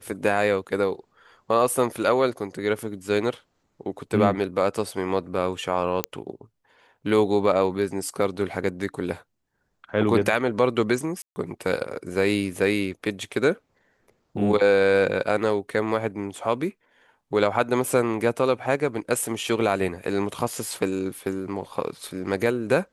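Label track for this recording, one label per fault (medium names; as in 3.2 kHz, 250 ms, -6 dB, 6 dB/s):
6.040000	6.040000	pop -6 dBFS
11.220000	11.360000	dropout 140 ms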